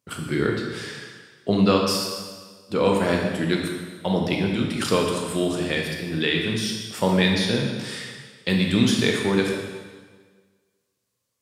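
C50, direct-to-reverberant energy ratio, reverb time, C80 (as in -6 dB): 2.5 dB, 0.0 dB, 1.5 s, 4.5 dB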